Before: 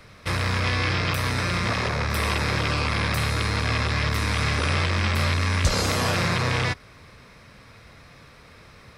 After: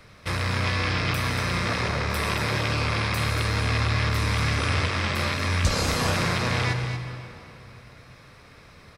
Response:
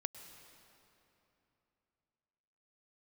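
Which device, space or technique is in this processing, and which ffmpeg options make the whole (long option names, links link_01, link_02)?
cave: -filter_complex "[0:a]aecho=1:1:234:0.335[link_01];[1:a]atrim=start_sample=2205[link_02];[link_01][link_02]afir=irnorm=-1:irlink=0"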